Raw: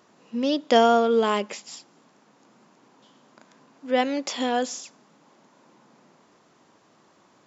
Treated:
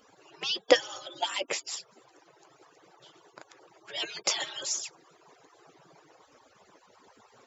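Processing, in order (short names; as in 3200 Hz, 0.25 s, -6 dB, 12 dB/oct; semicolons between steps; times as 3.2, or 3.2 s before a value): median-filter separation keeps percussive; gain +5 dB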